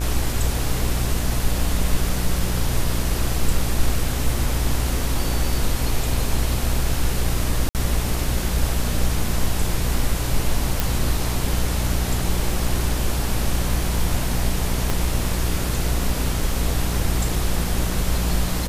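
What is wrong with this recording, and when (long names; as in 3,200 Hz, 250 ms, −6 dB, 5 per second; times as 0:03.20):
mains buzz 60 Hz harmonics 34 −25 dBFS
0:07.69–0:07.75: drop-out 58 ms
0:10.80: click
0:14.90: click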